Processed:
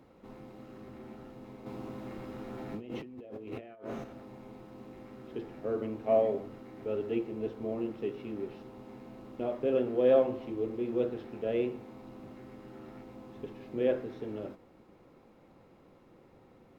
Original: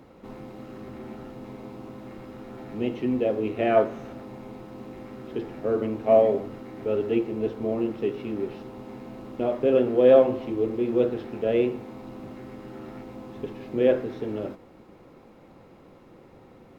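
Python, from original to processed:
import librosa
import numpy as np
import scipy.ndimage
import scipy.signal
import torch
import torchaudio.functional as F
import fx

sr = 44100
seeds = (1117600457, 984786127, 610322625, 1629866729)

y = fx.over_compress(x, sr, threshold_db=-35.0, ratio=-1.0, at=(1.66, 4.04))
y = y * librosa.db_to_amplitude(-8.0)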